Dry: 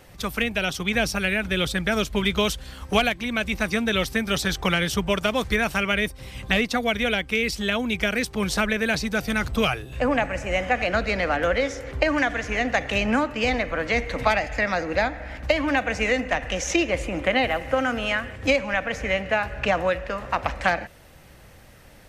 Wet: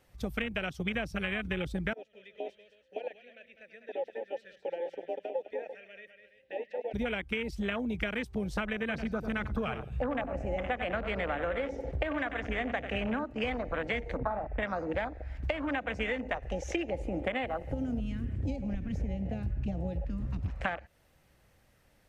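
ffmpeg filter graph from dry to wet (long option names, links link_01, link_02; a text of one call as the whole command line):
ffmpeg -i in.wav -filter_complex "[0:a]asettb=1/sr,asplit=3[link_01][link_02][link_03];[link_01]atrim=end=1.934[link_04];[link_02]atrim=start=1.93:end=6.94,asetpts=PTS-STARTPTS,afade=type=in:duration=0.004:curve=qsin,afade=type=out:start_time=5.006:duration=0.004:curve=qsin,asplit=3[link_05][link_06][link_07];[link_05]bandpass=frequency=530:width_type=q:width=8,volume=0dB[link_08];[link_06]bandpass=frequency=1840:width_type=q:width=8,volume=-6dB[link_09];[link_07]bandpass=frequency=2480:width_type=q:width=8,volume=-9dB[link_10];[link_08][link_09][link_10]amix=inputs=3:normalize=0,aecho=1:1:101|102|202|335:0.15|0.106|0.376|0.2,atrim=end_sample=220941[link_11];[link_03]atrim=start=6.936[link_12];[link_04][link_11]acrossfade=duration=0.004:curve1=hsin:curve2=qsin[link_13];[link_13][link_12]acrossfade=duration=0.004:curve1=qsin:curve2=hsin,asettb=1/sr,asplit=3[link_14][link_15][link_16];[link_14]atrim=end=8.794[link_17];[link_15]atrim=start=8.79:end=13.24,asetpts=PTS-STARTPTS,afade=type=in:duration=0.004:curve=qsin,afade=type=out:start_time=4.446:duration=0.004:curve=qsin,highshelf=frequency=5400:gain=-6,asplit=2[link_18][link_19];[link_19]adelay=94,lowpass=frequency=4300:poles=1,volume=-9.5dB,asplit=2[link_20][link_21];[link_21]adelay=94,lowpass=frequency=4300:poles=1,volume=0.37,asplit=2[link_22][link_23];[link_23]adelay=94,lowpass=frequency=4300:poles=1,volume=0.37,asplit=2[link_24][link_25];[link_25]adelay=94,lowpass=frequency=4300:poles=1,volume=0.37[link_26];[link_18][link_20][link_22][link_24][link_26]amix=inputs=5:normalize=0,atrim=end_sample=196245[link_27];[link_16]atrim=start=13.236[link_28];[link_17][link_27]acrossfade=duration=0.004:curve1=hsin:curve2=qsin[link_29];[link_29][link_28]acrossfade=duration=0.004:curve1=qsin:curve2=hsin,asettb=1/sr,asplit=3[link_30][link_31][link_32];[link_30]atrim=end=14.174[link_33];[link_31]atrim=start=14.17:end=14.63,asetpts=PTS-STARTPTS,afade=type=in:duration=0.004:curve=qsin,afade=type=out:start_time=0.456:duration=0.004:curve=qsin,lowpass=1400,asplit=2[link_34][link_35];[link_35]adelay=43,volume=-8dB[link_36];[link_34][link_36]amix=inputs=2:normalize=0,atrim=end_sample=20286[link_37];[link_32]atrim=start=14.626[link_38];[link_33][link_37]acrossfade=duration=0.004:curve1=hsin:curve2=qsin[link_39];[link_39][link_38]acrossfade=duration=0.004:curve1=qsin:curve2=hsin,asettb=1/sr,asplit=3[link_40][link_41][link_42];[link_40]atrim=end=17.714[link_43];[link_41]atrim=start=17.71:end=20.48,asetpts=PTS-STARTPTS,afade=type=in:duration=0.004:curve=qsin,afade=type=out:start_time=2.766:duration=0.004:curve=qsin,lowshelf=frequency=440:gain=9,acrossover=split=230|3000[link_44][link_45][link_46];[link_45]acompressor=threshold=-35dB:ratio=4:attack=3.2:release=140:knee=2.83:detection=peak[link_47];[link_44][link_47][link_46]amix=inputs=3:normalize=0[link_48];[link_42]atrim=start=20.476[link_49];[link_43][link_48]acrossfade=duration=0.004:curve1=hsin:curve2=qsin[link_50];[link_50][link_49]acrossfade=duration=0.004:curve1=qsin:curve2=hsin,afwtdn=0.0562,acompressor=threshold=-30dB:ratio=6" out.wav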